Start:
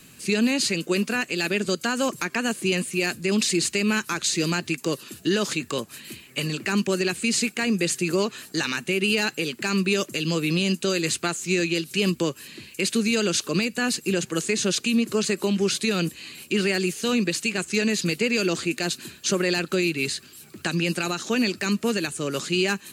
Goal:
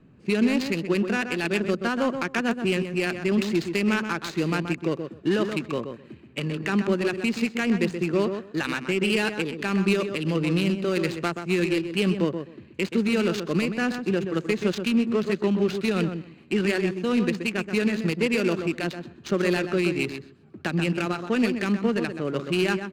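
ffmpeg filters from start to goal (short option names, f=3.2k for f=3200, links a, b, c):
-af "aecho=1:1:128|256|384:0.447|0.0804|0.0145,adynamicsmooth=sensitivity=1.5:basefreq=850"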